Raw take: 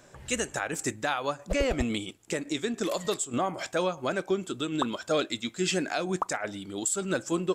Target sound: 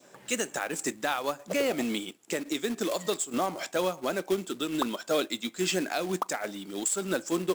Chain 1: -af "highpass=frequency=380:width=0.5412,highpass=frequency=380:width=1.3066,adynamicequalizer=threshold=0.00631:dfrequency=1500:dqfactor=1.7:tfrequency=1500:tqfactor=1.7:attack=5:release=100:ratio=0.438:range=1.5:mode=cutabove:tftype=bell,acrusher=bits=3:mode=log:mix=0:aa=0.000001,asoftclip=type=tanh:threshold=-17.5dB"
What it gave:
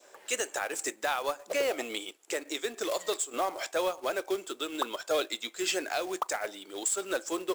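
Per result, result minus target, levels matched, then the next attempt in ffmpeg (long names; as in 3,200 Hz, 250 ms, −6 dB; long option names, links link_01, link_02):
soft clipping: distortion +10 dB; 250 Hz band −6.5 dB
-af "highpass=frequency=380:width=0.5412,highpass=frequency=380:width=1.3066,adynamicequalizer=threshold=0.00631:dfrequency=1500:dqfactor=1.7:tfrequency=1500:tqfactor=1.7:attack=5:release=100:ratio=0.438:range=1.5:mode=cutabove:tftype=bell,acrusher=bits=3:mode=log:mix=0:aa=0.000001,asoftclip=type=tanh:threshold=-10.5dB"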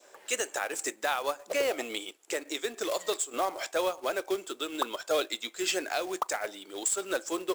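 250 Hz band −6.5 dB
-af "highpass=frequency=180:width=0.5412,highpass=frequency=180:width=1.3066,adynamicequalizer=threshold=0.00631:dfrequency=1500:dqfactor=1.7:tfrequency=1500:tqfactor=1.7:attack=5:release=100:ratio=0.438:range=1.5:mode=cutabove:tftype=bell,acrusher=bits=3:mode=log:mix=0:aa=0.000001,asoftclip=type=tanh:threshold=-10.5dB"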